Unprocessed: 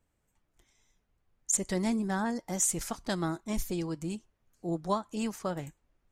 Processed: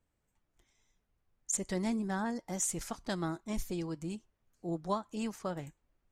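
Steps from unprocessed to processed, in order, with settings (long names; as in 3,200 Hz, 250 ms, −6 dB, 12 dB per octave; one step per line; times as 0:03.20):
high-shelf EQ 9,300 Hz −5.5 dB
level −3.5 dB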